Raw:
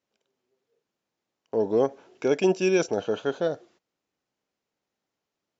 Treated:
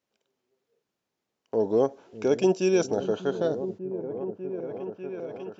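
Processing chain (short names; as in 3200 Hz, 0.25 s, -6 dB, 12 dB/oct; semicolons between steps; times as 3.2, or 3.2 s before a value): repeats that get brighter 0.595 s, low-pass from 200 Hz, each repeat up 1 oct, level -6 dB; dynamic EQ 2100 Hz, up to -7 dB, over -48 dBFS, Q 1.3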